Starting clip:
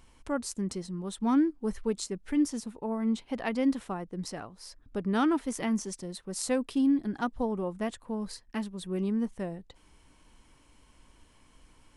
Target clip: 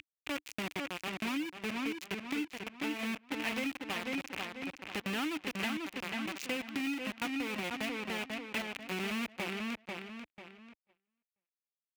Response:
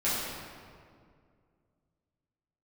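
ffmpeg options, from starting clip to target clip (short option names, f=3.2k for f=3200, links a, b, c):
-filter_complex "[0:a]aresample=16000,aresample=44100,acompressor=mode=upward:threshold=-32dB:ratio=2.5,acrusher=bits=4:mix=0:aa=0.000001,equalizer=f=300:t=o:w=0.23:g=6.5,asplit=2[a][b];[b]adelay=491,lowpass=f=4.9k:p=1,volume=-5dB,asplit=2[c][d];[d]adelay=491,lowpass=f=4.9k:p=1,volume=0.36,asplit=2[e][f];[f]adelay=491,lowpass=f=4.9k:p=1,volume=0.36,asplit=2[g][h];[h]adelay=491,lowpass=f=4.9k:p=1,volume=0.36[i];[c][e][g][i]amix=inputs=4:normalize=0[j];[a][j]amix=inputs=2:normalize=0,acompressor=threshold=-28dB:ratio=6,highpass=57,equalizer=f=2.5k:t=o:w=0.86:g=14.5,agate=range=-25dB:threshold=-49dB:ratio=16:detection=peak,volume=-6.5dB"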